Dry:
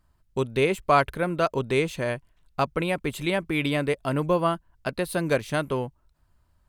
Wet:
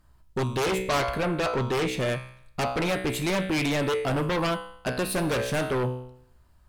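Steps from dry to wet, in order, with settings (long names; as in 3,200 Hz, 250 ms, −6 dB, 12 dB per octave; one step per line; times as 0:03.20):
tuned comb filter 63 Hz, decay 0.66 s, harmonics all, mix 70%
in parallel at −10.5 dB: sine wavefolder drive 17 dB, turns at −15 dBFS
0:00.82–0:02.00: on the sum: high-shelf EQ 8,100 Hz −6.5 dB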